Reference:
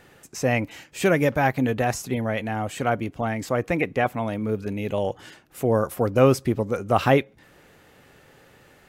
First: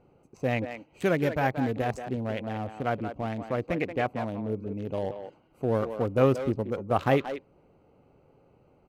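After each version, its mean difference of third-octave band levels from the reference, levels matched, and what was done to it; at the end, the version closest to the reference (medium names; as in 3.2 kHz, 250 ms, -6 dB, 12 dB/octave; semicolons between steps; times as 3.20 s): 5.0 dB: local Wiener filter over 25 samples; speakerphone echo 180 ms, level -8 dB; trim -5 dB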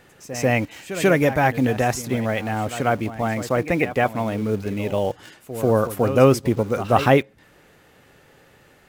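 3.5 dB: in parallel at -9 dB: bit crusher 6-bit; on the sum: pre-echo 140 ms -13 dB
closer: second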